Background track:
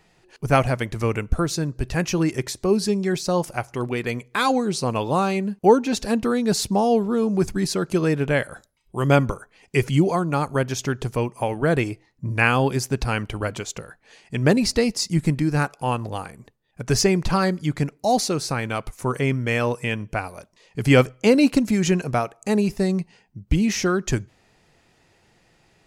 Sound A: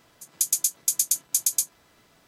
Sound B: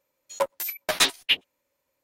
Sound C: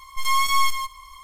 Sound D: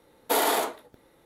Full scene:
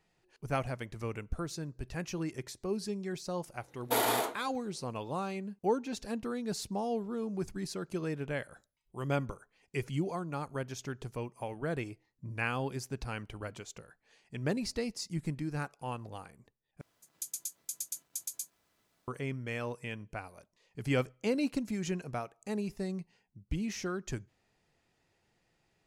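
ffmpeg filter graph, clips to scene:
ffmpeg -i bed.wav -i cue0.wav -i cue1.wav -i cue2.wav -i cue3.wav -filter_complex "[0:a]volume=-15dB[link_01];[1:a]acrusher=bits=9:mix=0:aa=0.000001[link_02];[link_01]asplit=2[link_03][link_04];[link_03]atrim=end=16.814[link_05];[link_02]atrim=end=2.27,asetpts=PTS-STARTPTS,volume=-16dB[link_06];[link_04]atrim=start=19.076[link_07];[4:a]atrim=end=1.25,asetpts=PTS-STARTPTS,volume=-5.5dB,afade=type=in:duration=0.004:curve=hsin,afade=type=out:start_time=1.246:duration=0.004:curve=hsin,adelay=159201S[link_08];[link_05][link_06]acrossfade=duration=0.004:curve1=hsin:curve2=hsin[link_09];[link_09][link_07]acrossfade=duration=0.004:curve1=hsin:curve2=hsin[link_10];[link_10][link_08]amix=inputs=2:normalize=0" out.wav

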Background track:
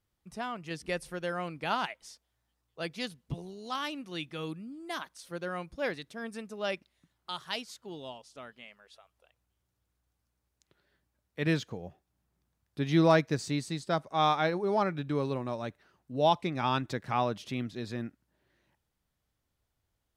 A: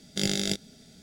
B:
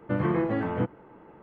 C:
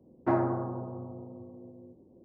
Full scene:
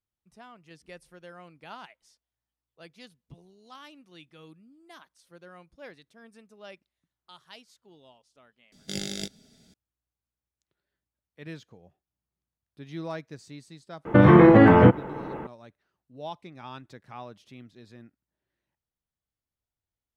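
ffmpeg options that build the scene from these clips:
ffmpeg -i bed.wav -i cue0.wav -i cue1.wav -filter_complex "[0:a]volume=-12.5dB[link_01];[2:a]alimiter=level_in=19dB:limit=-1dB:release=50:level=0:latency=1[link_02];[1:a]atrim=end=1.02,asetpts=PTS-STARTPTS,volume=-6dB,afade=type=in:duration=0.004:curve=hsin,afade=type=out:start_time=1.016:duration=0.004:curve=hsin,adelay=8720[link_03];[link_02]atrim=end=1.42,asetpts=PTS-STARTPTS,volume=-4dB,afade=type=in:duration=0.004:curve=hsin,afade=type=out:start_time=1.416:duration=0.004:curve=hsin,adelay=14050[link_04];[link_01][link_03][link_04]amix=inputs=3:normalize=0" out.wav

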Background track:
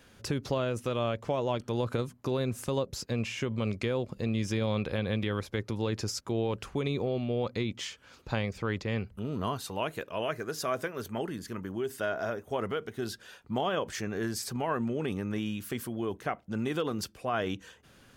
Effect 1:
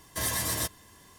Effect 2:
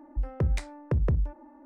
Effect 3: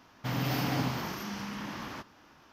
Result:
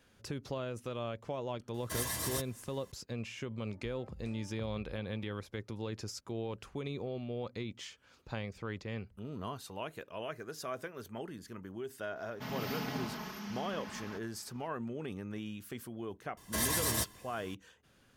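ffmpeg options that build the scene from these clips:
ffmpeg -i bed.wav -i cue0.wav -i cue1.wav -i cue2.wav -filter_complex "[1:a]asplit=2[link_01][link_02];[0:a]volume=-8.5dB[link_03];[2:a]acompressor=threshold=-36dB:ratio=6:attack=3.2:release=140:knee=1:detection=peak[link_04];[3:a]aecho=1:1:4.7:0.84[link_05];[link_01]atrim=end=1.18,asetpts=PTS-STARTPTS,volume=-7dB,afade=type=in:duration=0.004:curve=hsin,afade=type=out:start_time=1.176:duration=0.004:curve=hsin,adelay=1740[link_06];[link_04]atrim=end=1.65,asetpts=PTS-STARTPTS,volume=-12dB,afade=type=in:duration=0.004:curve=hsin,afade=type=out:start_time=1.646:duration=0.004:curve=hsin,adelay=3680[link_07];[link_05]atrim=end=2.52,asetpts=PTS-STARTPTS,volume=-9dB,afade=type=in:duration=0.004:curve=hsin,afade=type=out:start_time=2.516:duration=0.004:curve=hsin,adelay=12160[link_08];[link_02]atrim=end=1.18,asetpts=PTS-STARTPTS,volume=-2.5dB,afade=type=in:duration=0.004:curve=hsin,afade=type=out:start_time=1.176:duration=0.004:curve=hsin,adelay=16370[link_09];[link_03][link_06][link_07][link_08][link_09]amix=inputs=5:normalize=0" out.wav

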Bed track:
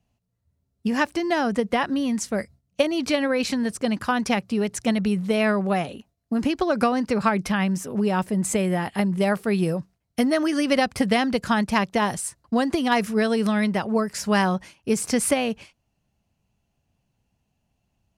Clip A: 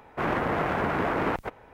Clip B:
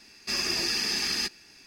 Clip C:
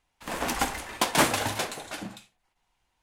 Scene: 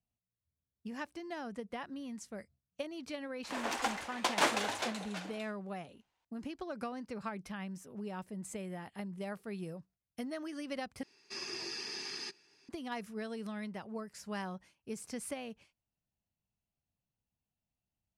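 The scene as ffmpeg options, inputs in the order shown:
ffmpeg -i bed.wav -i cue0.wav -i cue1.wav -i cue2.wav -filter_complex "[0:a]volume=-19.5dB[link_01];[3:a]acrossover=split=290 7700:gain=0.141 1 0.224[link_02][link_03][link_04];[link_02][link_03][link_04]amix=inputs=3:normalize=0[link_05];[2:a]highpass=frequency=110:width=0.5412,highpass=frequency=110:width=1.3066,equalizer=frequency=210:width_type=q:width=4:gain=-7,equalizer=frequency=400:width_type=q:width=4:gain=9,equalizer=frequency=590:width_type=q:width=4:gain=-3,equalizer=frequency=950:width_type=q:width=4:gain=5,equalizer=frequency=7600:width_type=q:width=4:gain=-4,lowpass=frequency=9500:width=0.5412,lowpass=frequency=9500:width=1.3066[link_06];[link_01]asplit=2[link_07][link_08];[link_07]atrim=end=11.034[link_09];[link_06]atrim=end=1.66,asetpts=PTS-STARTPTS,volume=-13.5dB[link_10];[link_08]atrim=start=12.686[link_11];[link_05]atrim=end=3.02,asetpts=PTS-STARTPTS,volume=-6dB,afade=type=in:duration=0.004:curve=hsin,afade=type=out:start_time=3.016:duration=0.004:curve=hsin,adelay=3230[link_12];[link_09][link_10]acrossfade=duration=0.004:curve1=hsin:curve2=hsin[link_13];[link_13][link_11]acrossfade=duration=0.004:curve1=hsin:curve2=hsin[link_14];[link_14][link_12]amix=inputs=2:normalize=0" out.wav

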